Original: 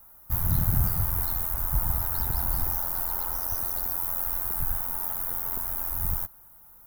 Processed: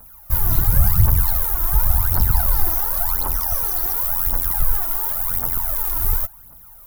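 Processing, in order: phaser 0.92 Hz, delay 3.1 ms, feedback 70%; gain +5 dB

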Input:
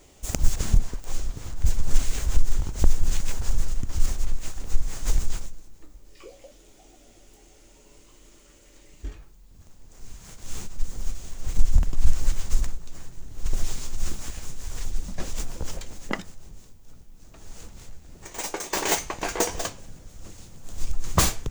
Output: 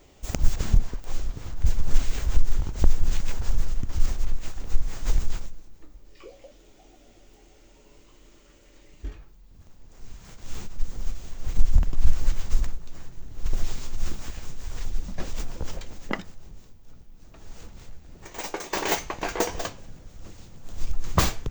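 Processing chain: bell 10000 Hz -13.5 dB 0.92 oct

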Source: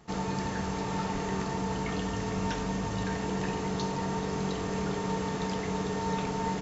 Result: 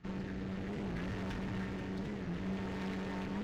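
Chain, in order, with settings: LPF 2700 Hz 12 dB/oct; band shelf 680 Hz -10.5 dB; de-hum 298.7 Hz, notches 11; time stretch by phase-locked vocoder 0.52×; rotary speaker horn 0.6 Hz; one-sided clip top -50 dBFS, bottom -34 dBFS; on a send: split-band echo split 440 Hz, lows 0.186 s, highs 0.747 s, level -9.5 dB; on the sum: record warp 45 rpm, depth 160 cents; gain +2.5 dB

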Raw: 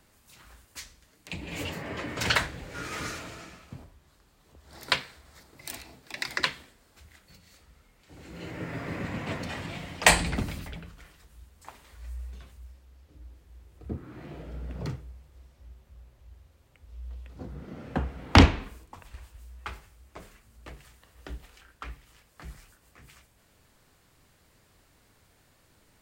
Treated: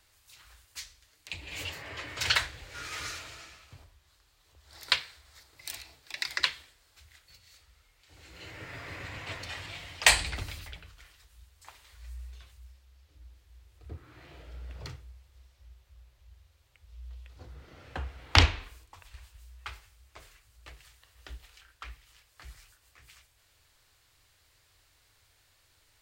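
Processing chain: EQ curve 100 Hz 0 dB, 210 Hz -18 dB, 300 Hz -8 dB, 4100 Hz +7 dB, 8700 Hz +3 dB; gain -4.5 dB

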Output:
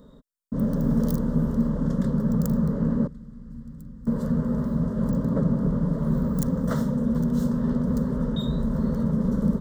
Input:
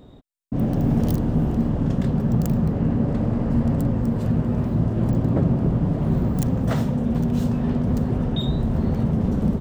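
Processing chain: 3.07–4.07 passive tone stack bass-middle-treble 6-0-2; fixed phaser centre 500 Hz, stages 8

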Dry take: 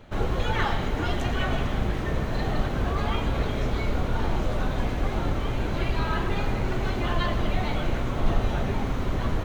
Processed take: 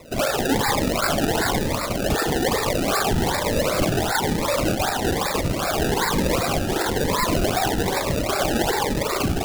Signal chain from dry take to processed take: sine-wave speech; tilt +2 dB/oct; reverb RT60 0.90 s, pre-delay 36 ms, DRR 0.5 dB; limiter -14.5 dBFS, peak gain reduction 10.5 dB; decimation with a swept rate 28×, swing 100% 2.6 Hz; cascading phaser rising 1.1 Hz; gain +3.5 dB

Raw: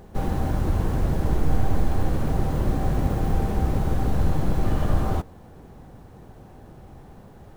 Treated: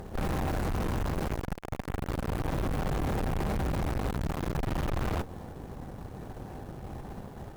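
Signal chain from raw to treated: 0.48–1.46 low shelf 190 Hz -4 dB; tube stage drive 36 dB, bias 0.75; gain +8 dB

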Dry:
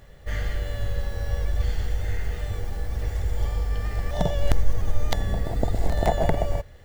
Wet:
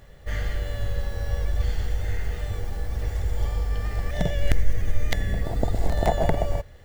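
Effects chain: 4.1–5.42 graphic EQ 1000/2000/4000 Hz -11/+9/-3 dB

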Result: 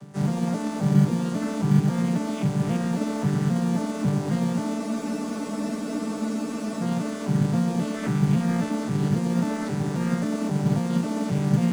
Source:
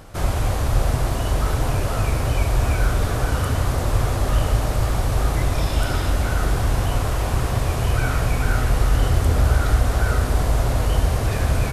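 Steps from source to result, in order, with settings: arpeggiated vocoder minor triad, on D3, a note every 0.269 s; tone controls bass +8 dB, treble +14 dB; in parallel at -11 dB: sample-and-hold 28×; on the sum: harmoniser +5 st -2 dB; spectral freeze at 4.8, 2.01 s; gain -7.5 dB

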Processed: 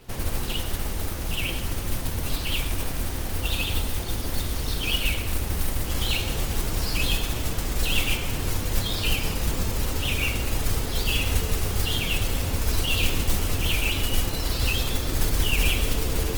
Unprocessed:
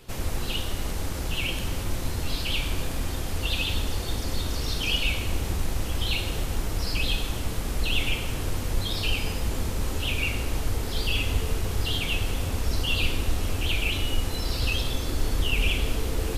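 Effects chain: Bessel low-pass 7100 Hz, order 8; modulation noise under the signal 11 dB; on a send: band-limited delay 0.129 s, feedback 67%, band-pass 1500 Hz, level -20 dB; on the sum: gain +1.5 dB; Opus 24 kbps 48000 Hz

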